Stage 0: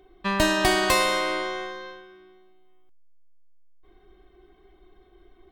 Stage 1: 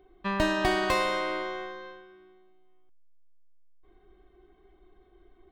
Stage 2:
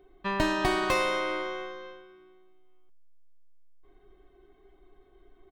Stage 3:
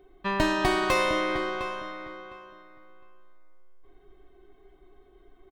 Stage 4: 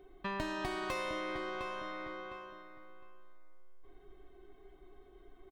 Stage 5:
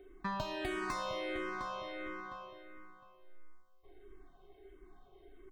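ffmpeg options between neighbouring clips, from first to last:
ffmpeg -i in.wav -af "equalizer=frequency=12000:width=0.33:gain=-13,volume=-3.5dB" out.wav
ffmpeg -i in.wav -af "aecho=1:1:7.3:0.41" out.wav
ffmpeg -i in.wav -filter_complex "[0:a]asplit=2[link_01][link_02];[link_02]adelay=708,lowpass=frequency=2900:poles=1,volume=-10dB,asplit=2[link_03][link_04];[link_04]adelay=708,lowpass=frequency=2900:poles=1,volume=0.2,asplit=2[link_05][link_06];[link_06]adelay=708,lowpass=frequency=2900:poles=1,volume=0.2[link_07];[link_01][link_03][link_05][link_07]amix=inputs=4:normalize=0,volume=2dB" out.wav
ffmpeg -i in.wav -af "acompressor=threshold=-37dB:ratio=3,volume=-1.5dB" out.wav
ffmpeg -i in.wav -filter_complex "[0:a]asplit=2[link_01][link_02];[link_02]afreqshift=-1.5[link_03];[link_01][link_03]amix=inputs=2:normalize=1,volume=2.5dB" out.wav

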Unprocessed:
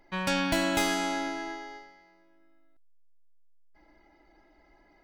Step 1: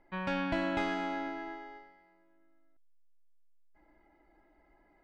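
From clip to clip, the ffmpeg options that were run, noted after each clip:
ffmpeg -i in.wav -af "lowpass=2300,volume=-4.5dB" out.wav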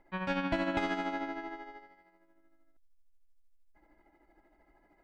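ffmpeg -i in.wav -af "tremolo=f=13:d=0.52,volume=2.5dB" out.wav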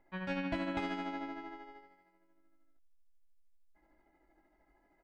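ffmpeg -i in.wav -filter_complex "[0:a]asplit=2[link_01][link_02];[link_02]adelay=22,volume=-6dB[link_03];[link_01][link_03]amix=inputs=2:normalize=0,volume=-5.5dB" out.wav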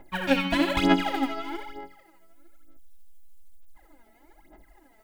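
ffmpeg -i in.wav -af "aphaser=in_gain=1:out_gain=1:delay=4.6:decay=0.77:speed=1.1:type=sinusoidal,aexciter=amount=1.5:drive=7.6:freq=2800,volume=8.5dB" out.wav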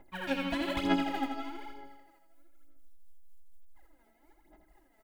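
ffmpeg -i in.wav -af "tremolo=f=4.2:d=0.41,aecho=1:1:83|166|249|332|415|498:0.376|0.199|0.106|0.056|0.0297|0.0157,volume=-7dB" out.wav

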